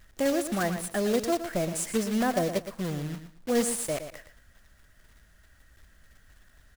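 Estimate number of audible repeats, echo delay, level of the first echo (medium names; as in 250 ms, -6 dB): 2, 116 ms, -10.0 dB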